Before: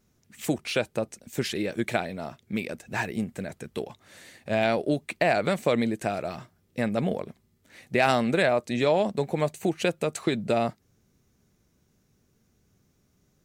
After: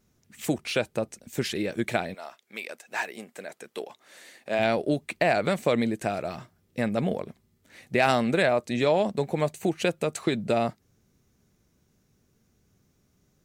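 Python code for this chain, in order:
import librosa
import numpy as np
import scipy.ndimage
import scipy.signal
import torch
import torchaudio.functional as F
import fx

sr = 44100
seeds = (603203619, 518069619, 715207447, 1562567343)

y = fx.highpass(x, sr, hz=fx.line((2.13, 800.0), (4.58, 290.0)), slope=12, at=(2.13, 4.58), fade=0.02)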